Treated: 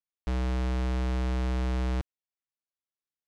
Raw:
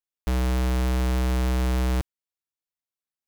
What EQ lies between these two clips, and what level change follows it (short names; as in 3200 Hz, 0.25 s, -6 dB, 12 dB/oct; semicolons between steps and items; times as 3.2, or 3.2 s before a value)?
air absorption 82 m; -5.0 dB